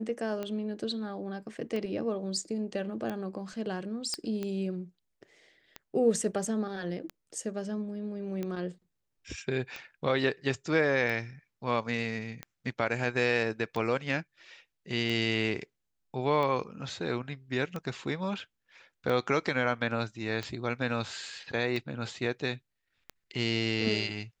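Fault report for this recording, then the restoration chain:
tick 45 rpm -22 dBFS
4.14 pop -18 dBFS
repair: de-click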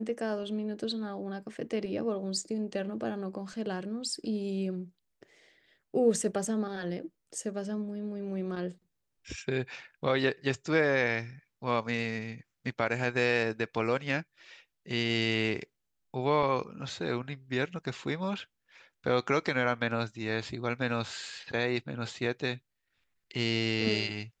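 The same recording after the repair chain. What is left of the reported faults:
none

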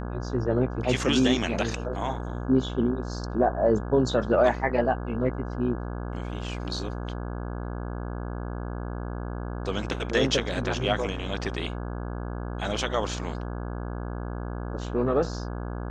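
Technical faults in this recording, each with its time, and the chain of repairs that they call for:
buzz 60 Hz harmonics 28 -33 dBFS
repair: de-hum 60 Hz, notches 28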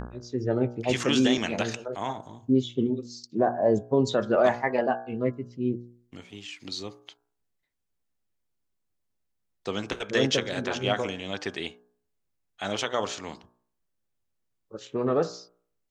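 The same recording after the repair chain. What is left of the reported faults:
none

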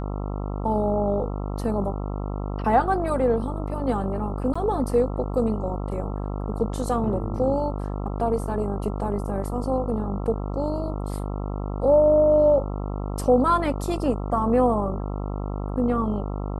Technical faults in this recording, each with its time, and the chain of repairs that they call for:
buzz 50 Hz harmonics 27 -29 dBFS
4.54–4.55 gap 15 ms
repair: de-hum 50 Hz, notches 27; interpolate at 4.54, 15 ms

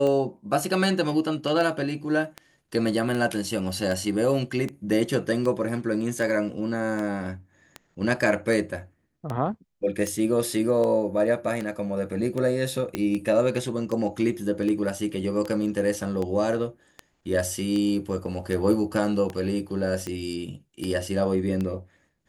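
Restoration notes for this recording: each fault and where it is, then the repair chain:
tick 78 rpm -18 dBFS
12.95 pop -13 dBFS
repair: de-click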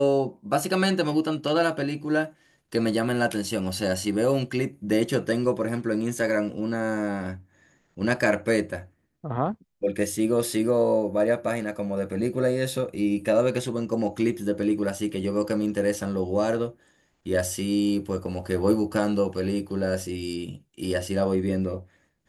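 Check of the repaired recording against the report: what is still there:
12.95 pop

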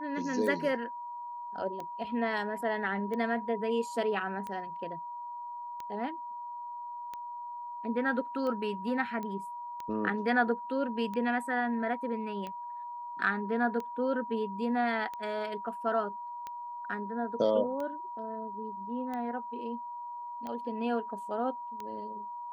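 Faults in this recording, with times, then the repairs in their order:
tick 45 rpm -26 dBFS
tone 960 Hz -38 dBFS
9.23 pop -26 dBFS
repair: de-click; notch 960 Hz, Q 30

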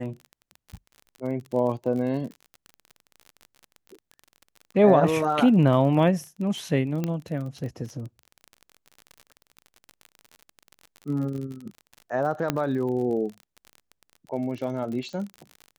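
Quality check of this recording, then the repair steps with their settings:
crackle 37/s -33 dBFS
7.04 pop -15 dBFS
12.5 pop -9 dBFS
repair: de-click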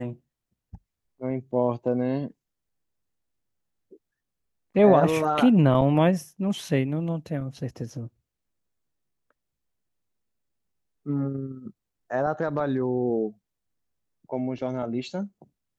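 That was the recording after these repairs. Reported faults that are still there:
none

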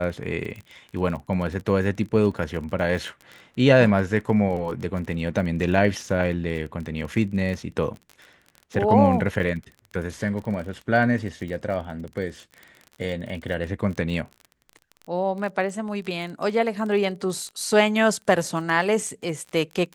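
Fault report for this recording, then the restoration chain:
crackle 28/s -32 dBFS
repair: de-click

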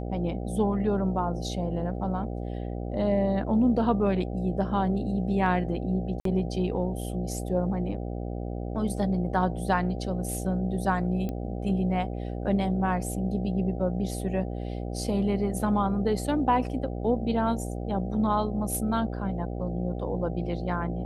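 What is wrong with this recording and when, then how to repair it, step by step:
buzz 60 Hz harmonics 13 -33 dBFS
6.2–6.25 gap 53 ms
11.29 pop -21 dBFS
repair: de-click; de-hum 60 Hz, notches 13; interpolate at 6.2, 53 ms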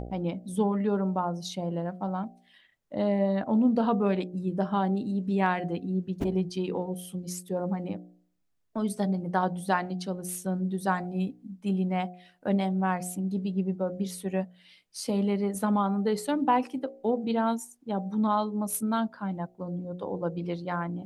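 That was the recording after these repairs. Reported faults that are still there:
none

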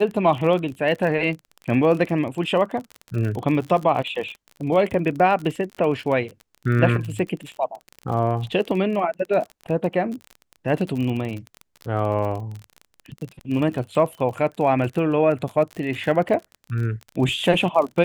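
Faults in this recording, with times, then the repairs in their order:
crackle 37/s -28 dBFS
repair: de-click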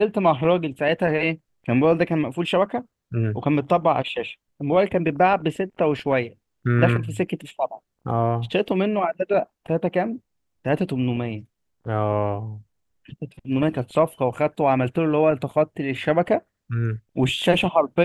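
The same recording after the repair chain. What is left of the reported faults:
none

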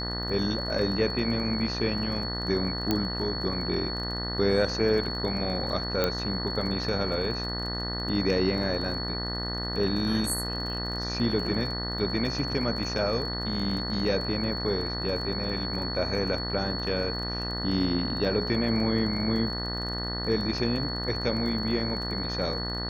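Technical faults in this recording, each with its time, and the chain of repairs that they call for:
buzz 60 Hz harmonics 33 -34 dBFS
crackle 23/s -35 dBFS
tone 4400 Hz -33 dBFS
2.91 pop -11 dBFS
6.04 pop -11 dBFS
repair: de-click; de-hum 60 Hz, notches 33; notch 4400 Hz, Q 30

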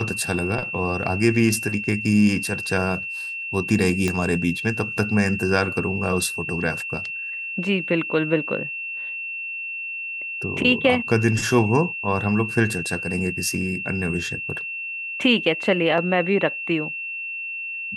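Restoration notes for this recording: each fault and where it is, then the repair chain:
tone 2700 Hz -28 dBFS
4.08 pop -10 dBFS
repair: de-click; notch 2700 Hz, Q 30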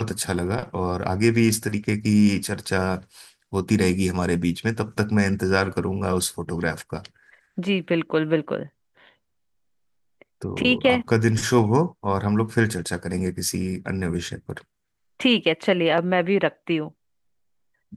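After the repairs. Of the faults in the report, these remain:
4.08 pop

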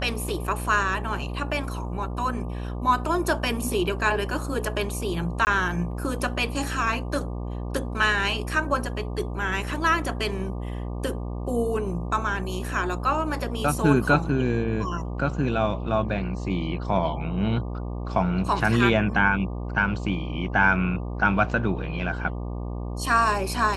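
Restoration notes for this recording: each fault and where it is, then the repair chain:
buzz 60 Hz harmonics 20 -31 dBFS
5.45–5.47 gap 19 ms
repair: de-hum 60 Hz, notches 20; interpolate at 5.45, 19 ms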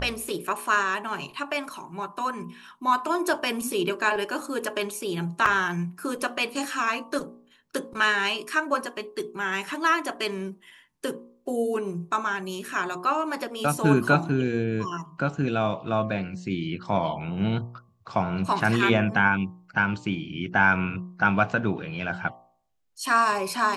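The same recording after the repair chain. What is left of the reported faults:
none

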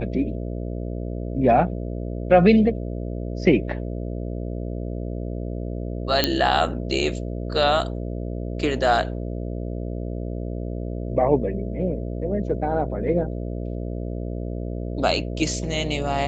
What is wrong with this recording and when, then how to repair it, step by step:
buzz 60 Hz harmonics 11 -29 dBFS
6.24 pop -3 dBFS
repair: de-click; de-hum 60 Hz, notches 11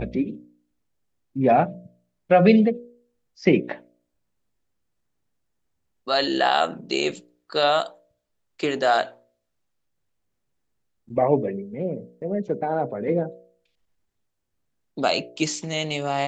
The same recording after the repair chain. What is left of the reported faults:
none

